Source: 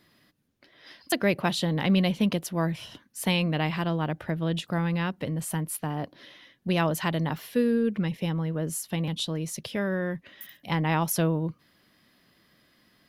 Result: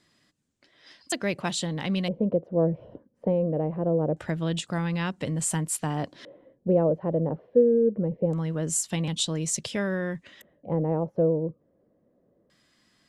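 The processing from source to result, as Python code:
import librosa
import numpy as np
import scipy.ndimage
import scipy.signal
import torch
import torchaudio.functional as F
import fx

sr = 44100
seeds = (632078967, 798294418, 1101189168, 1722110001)

y = fx.rider(x, sr, range_db=4, speed_s=0.5)
y = fx.filter_lfo_lowpass(y, sr, shape='square', hz=0.24, low_hz=520.0, high_hz=7700.0, q=4.3)
y = y * librosa.db_to_amplitude(-1.5)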